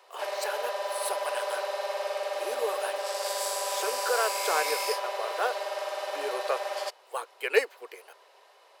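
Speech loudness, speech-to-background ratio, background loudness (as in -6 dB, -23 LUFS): -33.0 LUFS, -1.5 dB, -31.5 LUFS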